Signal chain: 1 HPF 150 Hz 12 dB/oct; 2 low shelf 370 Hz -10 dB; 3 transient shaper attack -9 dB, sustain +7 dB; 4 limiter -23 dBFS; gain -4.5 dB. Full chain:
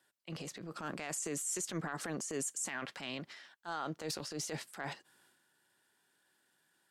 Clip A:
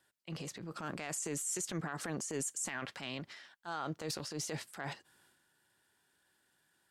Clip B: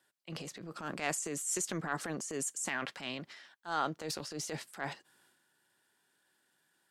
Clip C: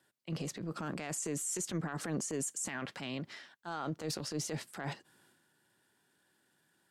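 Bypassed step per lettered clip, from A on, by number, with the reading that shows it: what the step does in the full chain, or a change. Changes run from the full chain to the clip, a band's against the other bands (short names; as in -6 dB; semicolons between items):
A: 1, 125 Hz band +2.5 dB; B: 4, crest factor change +7.5 dB; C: 2, 125 Hz band +5.5 dB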